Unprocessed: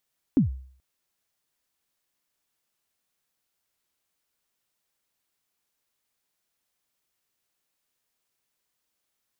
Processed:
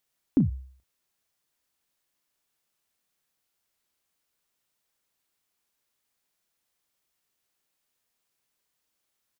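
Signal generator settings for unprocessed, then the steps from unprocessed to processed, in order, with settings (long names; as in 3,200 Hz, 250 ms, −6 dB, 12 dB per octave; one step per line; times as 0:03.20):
synth kick length 0.43 s, from 310 Hz, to 65 Hz, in 124 ms, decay 0.53 s, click off, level −13 dB
double-tracking delay 34 ms −11.5 dB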